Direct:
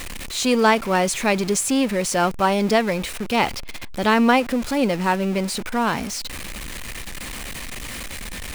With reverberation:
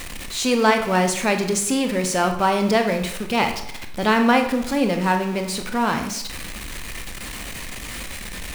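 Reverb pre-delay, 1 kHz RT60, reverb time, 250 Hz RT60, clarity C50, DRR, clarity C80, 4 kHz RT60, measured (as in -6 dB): 21 ms, 0.80 s, 0.75 s, 0.70 s, 8.5 dB, 5.5 dB, 11.5 dB, 0.60 s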